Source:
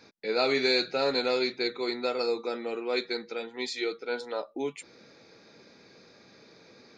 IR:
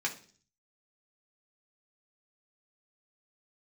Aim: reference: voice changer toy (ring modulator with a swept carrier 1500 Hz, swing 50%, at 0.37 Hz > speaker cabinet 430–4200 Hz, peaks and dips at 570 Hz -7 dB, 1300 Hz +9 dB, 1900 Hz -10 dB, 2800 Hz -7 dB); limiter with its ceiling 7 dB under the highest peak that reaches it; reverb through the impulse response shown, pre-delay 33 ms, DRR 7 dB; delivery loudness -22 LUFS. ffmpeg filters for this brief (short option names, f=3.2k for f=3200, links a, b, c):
-filter_complex "[0:a]alimiter=limit=-21.5dB:level=0:latency=1,asplit=2[a][b];[1:a]atrim=start_sample=2205,adelay=33[c];[b][c]afir=irnorm=-1:irlink=0,volume=-12.5dB[d];[a][d]amix=inputs=2:normalize=0,aeval=exprs='val(0)*sin(2*PI*1500*n/s+1500*0.5/0.37*sin(2*PI*0.37*n/s))':c=same,highpass=430,equalizer=f=570:t=q:w=4:g=-7,equalizer=f=1.3k:t=q:w=4:g=9,equalizer=f=1.9k:t=q:w=4:g=-10,equalizer=f=2.8k:t=q:w=4:g=-7,lowpass=f=4.2k:w=0.5412,lowpass=f=4.2k:w=1.3066,volume=12dB"